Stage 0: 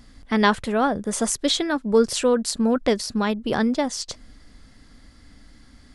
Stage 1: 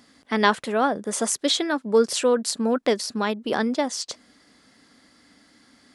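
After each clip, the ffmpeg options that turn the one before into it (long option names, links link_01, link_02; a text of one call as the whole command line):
ffmpeg -i in.wav -af "highpass=250" out.wav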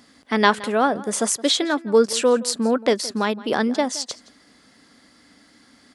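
ffmpeg -i in.wav -filter_complex "[0:a]asplit=2[link_01][link_02];[link_02]adelay=169.1,volume=-19dB,highshelf=frequency=4000:gain=-3.8[link_03];[link_01][link_03]amix=inputs=2:normalize=0,volume=2.5dB" out.wav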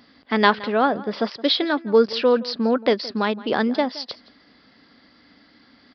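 ffmpeg -i in.wav -af "aresample=11025,aresample=44100" out.wav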